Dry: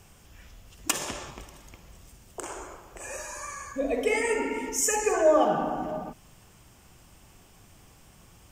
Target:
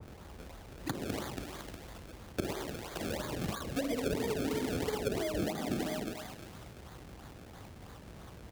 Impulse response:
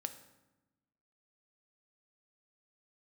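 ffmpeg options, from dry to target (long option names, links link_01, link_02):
-filter_complex "[0:a]aecho=1:1:235|470|705:0.112|0.0415|0.0154,acrossover=split=190|2400[link_01][link_02][link_03];[link_01]acompressor=threshold=-57dB:ratio=4[link_04];[link_02]acompressor=threshold=-35dB:ratio=4[link_05];[link_03]acompressor=threshold=-41dB:ratio=4[link_06];[link_04][link_05][link_06]amix=inputs=3:normalize=0,lowshelf=frequency=85:gain=10.5,acrusher=samples=31:mix=1:aa=0.000001:lfo=1:lforange=31:lforate=3,highpass=61,acrossover=split=460[link_07][link_08];[link_08]acompressor=threshold=-45dB:ratio=10[link_09];[link_07][link_09]amix=inputs=2:normalize=0,adynamicequalizer=threshold=0.001:dfrequency=1700:dqfactor=0.7:tfrequency=1700:tqfactor=0.7:attack=5:release=100:ratio=0.375:range=2.5:mode=boostabove:tftype=highshelf,volume=5dB"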